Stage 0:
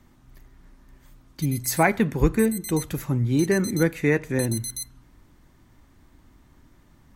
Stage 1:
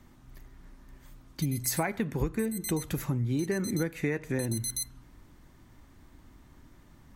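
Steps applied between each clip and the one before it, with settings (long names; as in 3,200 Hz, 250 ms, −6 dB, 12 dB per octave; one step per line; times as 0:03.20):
downward compressor 8 to 1, threshold −26 dBFS, peak gain reduction 13.5 dB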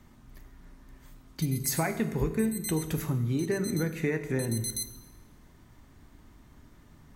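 convolution reverb RT60 1.1 s, pre-delay 4 ms, DRR 8 dB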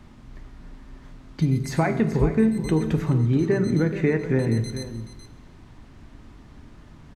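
bit-depth reduction 10 bits, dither triangular
head-to-tape spacing loss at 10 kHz 23 dB
single-tap delay 427 ms −12 dB
level +8.5 dB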